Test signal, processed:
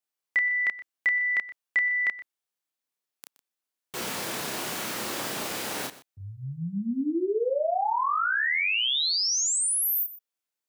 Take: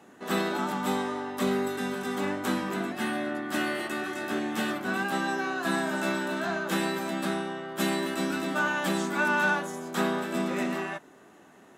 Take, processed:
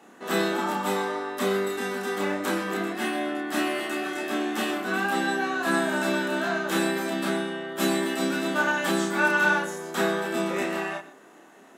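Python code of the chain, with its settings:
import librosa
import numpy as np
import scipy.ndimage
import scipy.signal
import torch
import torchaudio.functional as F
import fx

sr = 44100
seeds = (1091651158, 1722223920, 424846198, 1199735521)

y = scipy.signal.sosfilt(scipy.signal.butter(2, 230.0, 'highpass', fs=sr, output='sos'), x)
y = fx.doubler(y, sr, ms=30.0, db=-2.5)
y = y + 10.0 ** (-16.5 / 20.0) * np.pad(y, (int(123 * sr / 1000.0), 0))[:len(y)]
y = F.gain(torch.from_numpy(y), 1.5).numpy()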